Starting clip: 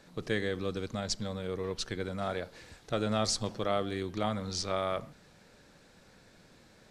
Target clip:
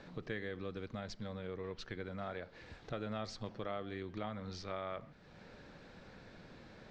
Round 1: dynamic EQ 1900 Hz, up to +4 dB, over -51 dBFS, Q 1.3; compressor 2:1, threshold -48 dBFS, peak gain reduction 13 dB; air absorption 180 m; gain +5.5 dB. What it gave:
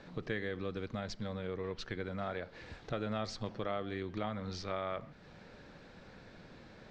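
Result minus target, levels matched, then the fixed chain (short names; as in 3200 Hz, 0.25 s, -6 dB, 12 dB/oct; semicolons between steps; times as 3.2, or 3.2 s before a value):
compressor: peak gain reduction -4 dB
dynamic EQ 1900 Hz, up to +4 dB, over -51 dBFS, Q 1.3; compressor 2:1, threshold -56 dBFS, peak gain reduction 17 dB; air absorption 180 m; gain +5.5 dB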